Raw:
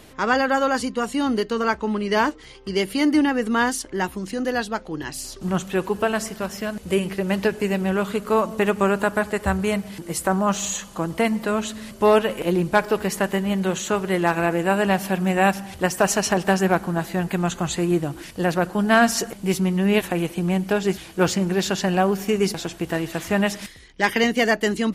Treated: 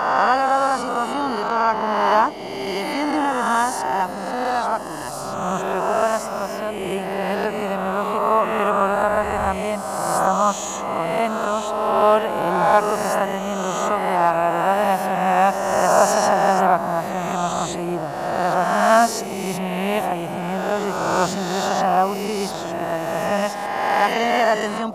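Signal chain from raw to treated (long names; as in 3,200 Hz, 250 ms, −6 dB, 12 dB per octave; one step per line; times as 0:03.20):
peak hold with a rise ahead of every peak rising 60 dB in 1.92 s
noise in a band 150–760 Hz −34 dBFS
flat-topped bell 890 Hz +10 dB 1.3 octaves
level −7 dB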